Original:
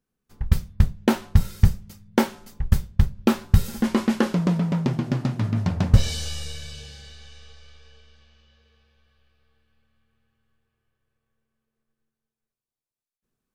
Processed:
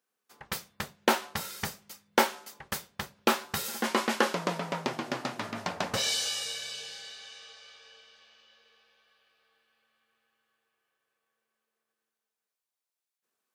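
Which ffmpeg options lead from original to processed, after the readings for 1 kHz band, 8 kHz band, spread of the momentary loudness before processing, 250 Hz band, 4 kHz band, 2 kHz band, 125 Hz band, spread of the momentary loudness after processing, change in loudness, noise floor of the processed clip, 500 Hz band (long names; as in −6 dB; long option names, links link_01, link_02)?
+2.0 dB, +3.0 dB, 15 LU, −13.0 dB, +3.0 dB, +2.5 dB, −23.5 dB, 17 LU, −7.5 dB, below −85 dBFS, −2.5 dB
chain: -af "highpass=570,acontrast=84,volume=-4dB"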